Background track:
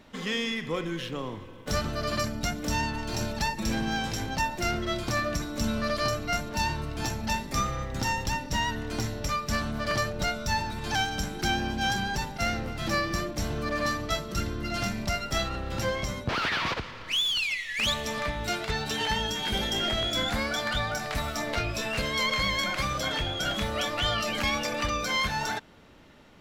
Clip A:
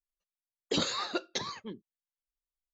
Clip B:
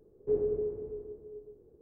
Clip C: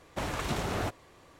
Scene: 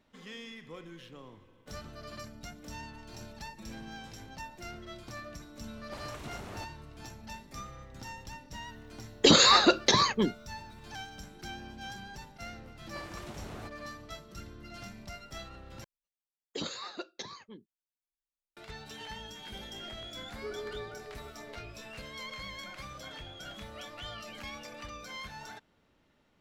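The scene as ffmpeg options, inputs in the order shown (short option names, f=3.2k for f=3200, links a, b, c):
-filter_complex "[3:a]asplit=2[a][b];[1:a]asplit=2[c][d];[0:a]volume=-15.5dB[e];[c]alimiter=level_in=23.5dB:limit=-1dB:release=50:level=0:latency=1[f];[2:a]asoftclip=type=tanh:threshold=-27.5dB[g];[e]asplit=2[h][i];[h]atrim=end=15.844[j];[d]atrim=end=2.73,asetpts=PTS-STARTPTS,volume=-7.5dB[k];[i]atrim=start=18.566[l];[a]atrim=end=1.39,asetpts=PTS-STARTPTS,volume=-12dB,afade=t=in:d=0.004:c=hsin,afade=t=out:st=1.386:d=0.004:c=hsin,adelay=5750[m];[f]atrim=end=2.73,asetpts=PTS-STARTPTS,volume=-8.5dB,afade=t=in:d=0.004:c=hsin,afade=t=out:st=2.726:d=0.004:c=hsin,adelay=8530[n];[b]atrim=end=1.39,asetpts=PTS-STARTPTS,volume=-13.5dB,afade=t=in:d=0.004:c=hsin,afade=t=out:st=1.386:d=0.004:c=hsin,adelay=12780[o];[g]atrim=end=1.81,asetpts=PTS-STARTPTS,volume=-8dB,afade=t=in:d=0.004:c=hsin,afade=t=out:st=1.806:d=0.004:c=hsin,adelay=20150[p];[j][k]acrossfade=d=0.004:c1=hsin:c2=hsin[q];[q][l]acrossfade=d=0.004:c1=hsin:c2=hsin[r];[r][m][n][o][p]amix=inputs=5:normalize=0"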